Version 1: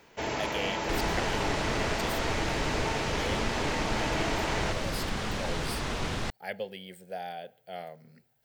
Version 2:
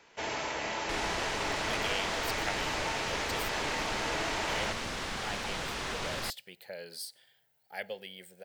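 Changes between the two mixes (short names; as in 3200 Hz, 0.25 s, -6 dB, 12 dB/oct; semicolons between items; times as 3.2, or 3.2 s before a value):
speech: entry +1.30 s; master: add low shelf 460 Hz -10 dB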